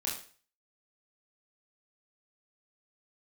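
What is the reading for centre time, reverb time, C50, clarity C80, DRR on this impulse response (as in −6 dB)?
35 ms, 0.40 s, 5.5 dB, 10.0 dB, −4.5 dB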